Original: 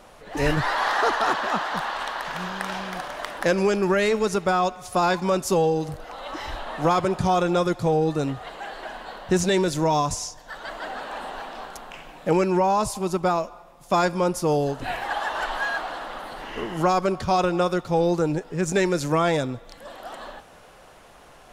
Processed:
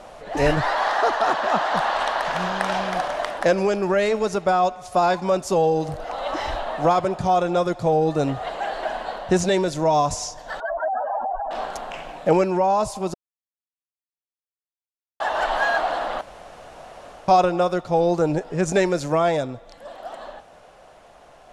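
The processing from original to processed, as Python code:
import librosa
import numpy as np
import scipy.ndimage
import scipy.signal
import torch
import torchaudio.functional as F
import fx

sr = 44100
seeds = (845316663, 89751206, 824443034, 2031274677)

y = fx.spec_expand(x, sr, power=3.3, at=(10.6, 11.51))
y = fx.edit(y, sr, fx.silence(start_s=13.14, length_s=2.06),
    fx.room_tone_fill(start_s=16.21, length_s=1.07), tone=tone)
y = scipy.signal.sosfilt(scipy.signal.butter(2, 9500.0, 'lowpass', fs=sr, output='sos'), y)
y = fx.peak_eq(y, sr, hz=660.0, db=8.0, octaves=0.68)
y = fx.rider(y, sr, range_db=4, speed_s=0.5)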